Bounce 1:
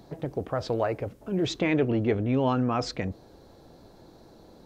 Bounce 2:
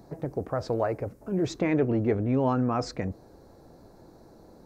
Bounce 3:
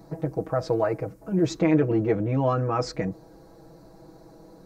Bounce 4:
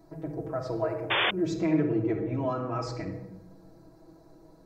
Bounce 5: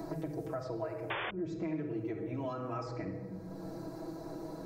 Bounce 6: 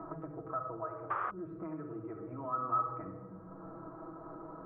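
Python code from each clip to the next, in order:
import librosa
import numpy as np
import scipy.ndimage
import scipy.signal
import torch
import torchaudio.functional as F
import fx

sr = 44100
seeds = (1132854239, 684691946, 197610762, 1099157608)

y1 = fx.peak_eq(x, sr, hz=3200.0, db=-13.0, octaves=0.78)
y2 = y1 + 0.96 * np.pad(y1, (int(6.2 * sr / 1000.0), 0))[:len(y1)]
y3 = fx.room_shoebox(y2, sr, seeds[0], volume_m3=3900.0, walls='furnished', distance_m=3.0)
y3 = fx.spec_paint(y3, sr, seeds[1], shape='noise', start_s=1.1, length_s=0.21, low_hz=320.0, high_hz=3600.0, level_db=-16.0)
y3 = y3 * 10.0 ** (-9.0 / 20.0)
y4 = fx.band_squash(y3, sr, depth_pct=100)
y4 = y4 * 10.0 ** (-9.0 / 20.0)
y5 = fx.ladder_lowpass(y4, sr, hz=1300.0, resonance_pct=85)
y5 = y5 * 10.0 ** (6.5 / 20.0)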